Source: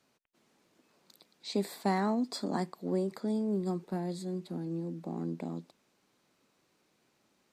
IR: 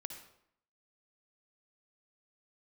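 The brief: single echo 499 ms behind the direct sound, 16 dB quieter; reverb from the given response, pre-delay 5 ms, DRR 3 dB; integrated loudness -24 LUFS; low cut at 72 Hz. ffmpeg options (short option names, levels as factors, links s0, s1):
-filter_complex "[0:a]highpass=72,aecho=1:1:499:0.158,asplit=2[s0][s1];[1:a]atrim=start_sample=2205,adelay=5[s2];[s1][s2]afir=irnorm=-1:irlink=0,volume=0.944[s3];[s0][s3]amix=inputs=2:normalize=0,volume=2.37"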